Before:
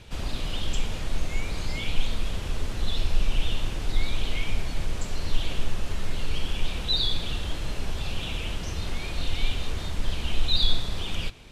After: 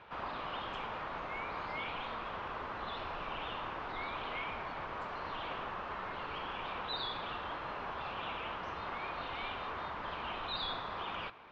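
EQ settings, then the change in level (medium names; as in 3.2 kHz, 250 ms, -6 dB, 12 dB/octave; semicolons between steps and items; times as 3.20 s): band-pass filter 1.1 kHz, Q 2.2; distance through air 220 m; +8.5 dB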